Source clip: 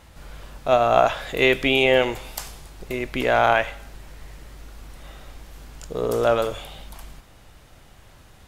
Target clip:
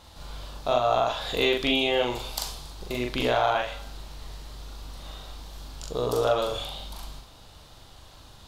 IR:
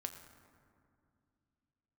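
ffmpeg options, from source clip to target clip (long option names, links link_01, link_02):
-filter_complex "[0:a]equalizer=frequency=1000:width_type=o:width=1:gain=5,equalizer=frequency=2000:width_type=o:width=1:gain=-7,equalizer=frequency=4000:width_type=o:width=1:gain=11,acompressor=threshold=-20dB:ratio=3,asplit=2[link_01][link_02];[1:a]atrim=start_sample=2205,atrim=end_sample=3087,adelay=41[link_03];[link_02][link_03]afir=irnorm=-1:irlink=0,volume=1dB[link_04];[link_01][link_04]amix=inputs=2:normalize=0,volume=-3.5dB"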